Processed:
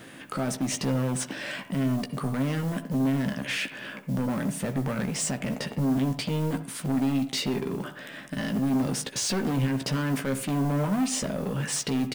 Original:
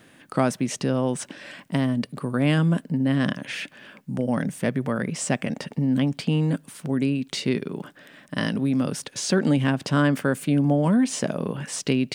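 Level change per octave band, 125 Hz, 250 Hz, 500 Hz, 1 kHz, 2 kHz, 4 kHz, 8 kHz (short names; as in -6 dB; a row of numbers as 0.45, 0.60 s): -4.0, -4.0, -5.5, -3.5, -3.5, -0.5, +1.5 dB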